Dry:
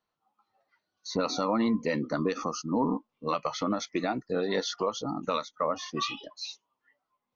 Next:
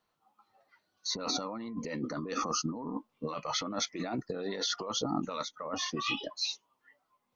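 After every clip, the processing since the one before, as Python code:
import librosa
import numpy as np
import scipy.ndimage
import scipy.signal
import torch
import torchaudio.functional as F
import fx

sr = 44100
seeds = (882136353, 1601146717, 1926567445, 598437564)

y = fx.over_compress(x, sr, threshold_db=-35.0, ratio=-1.0)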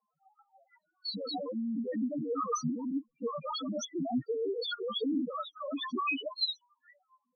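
y = fx.spec_topn(x, sr, count=2)
y = y * 10.0 ** (8.0 / 20.0)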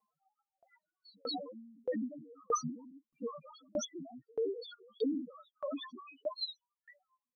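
y = fx.tremolo_decay(x, sr, direction='decaying', hz=1.6, depth_db=35)
y = y * 10.0 ** (3.0 / 20.0)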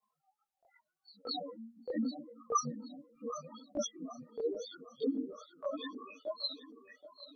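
y = fx.echo_feedback(x, sr, ms=775, feedback_pct=42, wet_db=-14.5)
y = fx.chorus_voices(y, sr, voices=2, hz=0.83, base_ms=22, depth_ms=4.7, mix_pct=70)
y = y * 10.0 ** (3.0 / 20.0)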